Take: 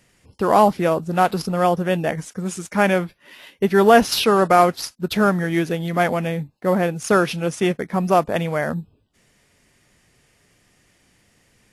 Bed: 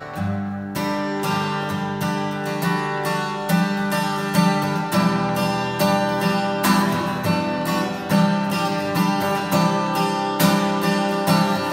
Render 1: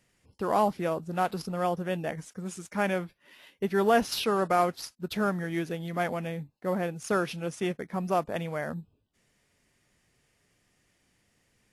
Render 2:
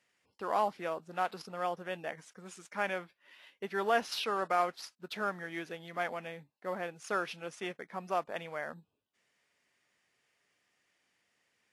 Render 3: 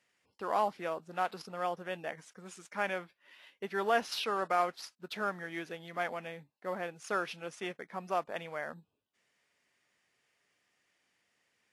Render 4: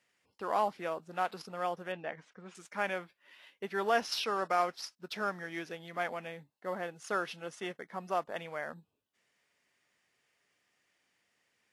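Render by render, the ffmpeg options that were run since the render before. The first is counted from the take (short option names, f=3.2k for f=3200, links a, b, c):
-af "volume=-10.5dB"
-af "highpass=f=1.1k:p=1,aemphasis=mode=reproduction:type=50kf"
-af anull
-filter_complex "[0:a]asettb=1/sr,asplit=3[a][b][c];[a]atrim=end=1.924[d];[b]atrim=start=1.92:end=2.55,asetpts=PTS-STARTPTS,afade=t=in:d=0.004:c=qsin,afade=t=out:st=0.626:d=0.004:c=qsin,lowpass=3.3k[e];[c]atrim=start=2.546[f];[d][e]acrossfade=d=0.004:c1=hsin:c2=qsin[g];[g][f]acrossfade=d=0.004:c1=qsin:c2=hsin,asettb=1/sr,asplit=3[h][i][j];[h]atrim=end=3.884[k];[i]atrim=start=3.88:end=5.75,asetpts=PTS-STARTPTS,afade=t=in:d=0.004:c=qsin,afade=t=out:st=1.866:d=0.004:c=qsin,equalizer=f=5.4k:t=o:w=0.25:g=7[l];[j]atrim=start=5.746[m];[k][l]acrossfade=d=0.004:c1=hsin:c2=qsin[n];[n][m]acrossfade=d=0.004:c1=qsin:c2=hsin,asettb=1/sr,asplit=3[o][p][q];[o]atrim=end=6.374[r];[p]atrim=start=6.37:end=8.38,asetpts=PTS-STARTPTS,afade=t=in:d=0.004:c=qsin,afade=t=out:st=2.006:d=0.004:c=qsin,bandreject=f=2.4k:w=9.6[s];[q]atrim=start=8.376[t];[r][s]acrossfade=d=0.004:c1=hsin:c2=qsin[u];[u][t]acrossfade=d=0.004:c1=qsin:c2=hsin"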